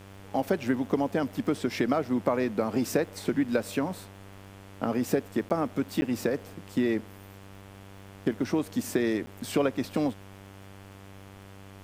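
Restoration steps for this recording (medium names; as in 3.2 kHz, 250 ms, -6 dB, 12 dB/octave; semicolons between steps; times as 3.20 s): de-click; de-hum 97.8 Hz, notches 36; interpolate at 5.49/6.01/9.26 s, 10 ms; expander -40 dBFS, range -21 dB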